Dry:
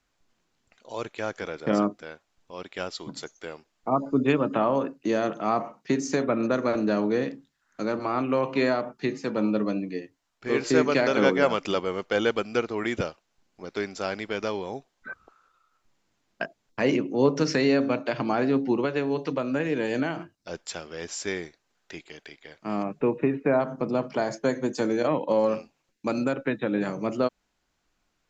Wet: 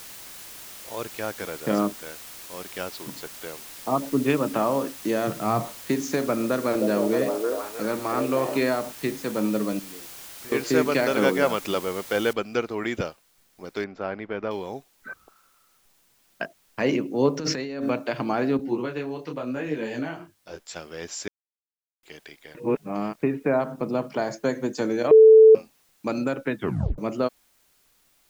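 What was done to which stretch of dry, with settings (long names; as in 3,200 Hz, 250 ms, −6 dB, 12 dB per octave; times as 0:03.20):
0:02.90–0:03.38: high-frequency loss of the air 120 metres
0:05.27–0:05.67: parametric band 120 Hz +15 dB
0:06.39–0:08.58: echo through a band-pass that steps 312 ms, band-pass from 490 Hz, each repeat 0.7 octaves, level 0 dB
0:09.79–0:10.52: downward compressor 2.5 to 1, threshold −47 dBFS
0:12.33: noise floor change −42 dB −64 dB
0:13.84–0:14.51: low-pass filter 1,800 Hz
0:17.39–0:17.90: compressor whose output falls as the input rises −29 dBFS
0:18.57–0:20.76: micro pitch shift up and down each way 30 cents
0:21.28–0:22.03: silence
0:22.55–0:23.23: reverse
0:25.11–0:25.55: beep over 440 Hz −7.5 dBFS
0:26.57: tape stop 0.41 s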